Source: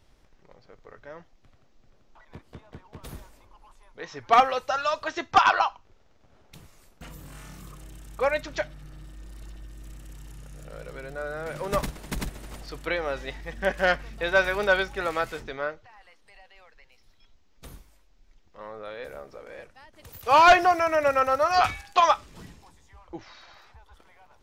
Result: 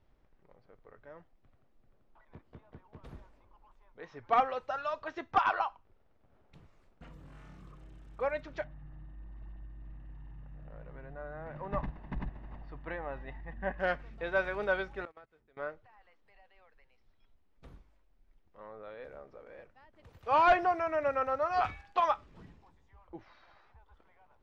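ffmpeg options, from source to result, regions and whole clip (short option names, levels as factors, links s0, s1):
-filter_complex "[0:a]asettb=1/sr,asplit=3[s0][s1][s2];[s0]atrim=end=8.644[s3];[s1]atrim=start=8.64:end=13.8,asetpts=PTS-STARTPTS,afade=t=in:d=0.004:c=qsin,afade=t=out:st=5.156:d=0.004:c=qsin,lowpass=2200,aecho=1:1:1.1:0.48,atrim=end_sample=227556[s4];[s2]atrim=start=13.796[s5];[s3][s4]acrossfade=d=0.004:c1=hsin:c2=qsin[s6];[s6][s5]acrossfade=d=0.004:c1=qsin:c2=hsin,asettb=1/sr,asplit=3[s7][s8][s9];[s7]atrim=end=15.054[s10];[s8]atrim=start=15.05:end=15.57,asetpts=PTS-STARTPTS,afade=t=in:d=0.004:c=qsin,afade=t=out:st=0.516:d=0.004:c=qsin,agate=range=0.0708:threshold=0.0355:ratio=16:release=100:detection=peak,acompressor=threshold=0.00891:ratio=10:attack=3.2:release=140:knee=1:detection=peak[s11];[s9]atrim=start=15.566[s12];[s10][s11]acrossfade=d=0.004:c1=hsin:c2=qsin[s13];[s13][s12]acrossfade=d=0.004:c1=qsin:c2=hsin,lowpass=f=2300:p=1,aemphasis=mode=reproduction:type=50kf,volume=0.422"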